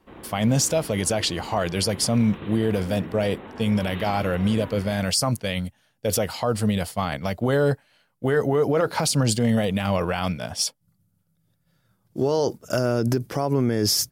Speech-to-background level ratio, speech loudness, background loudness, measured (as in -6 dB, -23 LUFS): 16.0 dB, -23.5 LUFS, -39.5 LUFS